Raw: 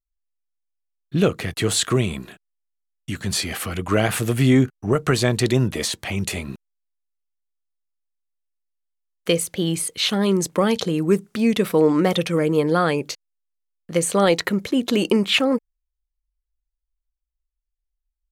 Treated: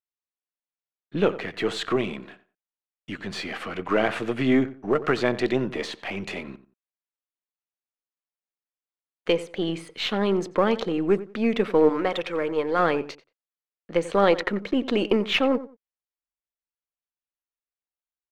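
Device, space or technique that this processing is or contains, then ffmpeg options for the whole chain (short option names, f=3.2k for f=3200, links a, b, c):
crystal radio: -filter_complex "[0:a]asettb=1/sr,asplit=3[a][b][c];[a]atrim=end=11.894[d];[b]atrim=start=11.89:end=12.79,asetpts=PTS-STARTPTS,afade=t=in:d=0.004:c=qsin,afade=t=out:st=0.896:d=0.004:c=qsin,equalizer=f=180:t=o:w=2.2:g=-9.5[e];[c]atrim=start=12.786[f];[d][e]acrossfade=d=0.004:c1=hsin:c2=qsin[g];[g][f]acrossfade=d=0.004:c1=qsin:c2=hsin,highpass=250,lowpass=2.7k,asplit=2[h][i];[i]adelay=90,lowpass=f=2.1k:p=1,volume=-15dB,asplit=2[j][k];[k]adelay=90,lowpass=f=2.1k:p=1,volume=0.23[l];[h][j][l]amix=inputs=3:normalize=0,aeval=exprs='if(lt(val(0),0),0.708*val(0),val(0))':c=same"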